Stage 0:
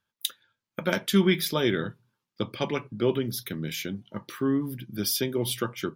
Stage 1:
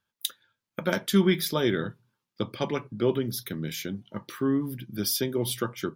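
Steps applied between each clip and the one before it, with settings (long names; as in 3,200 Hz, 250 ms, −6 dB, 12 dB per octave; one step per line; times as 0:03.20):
dynamic equaliser 2,600 Hz, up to −5 dB, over −48 dBFS, Q 2.3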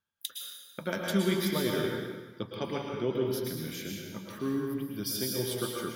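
reversed playback
upward compression, threshold −45 dBFS
reversed playback
dense smooth reverb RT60 1.3 s, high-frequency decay 0.95×, pre-delay 100 ms, DRR −1 dB
level −7 dB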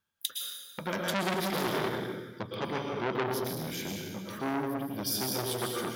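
saturating transformer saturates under 2,500 Hz
level +4 dB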